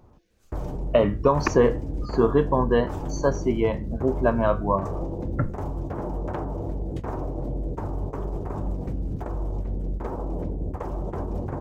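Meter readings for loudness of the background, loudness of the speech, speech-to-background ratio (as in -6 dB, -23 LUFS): -32.0 LUFS, -24.0 LUFS, 8.0 dB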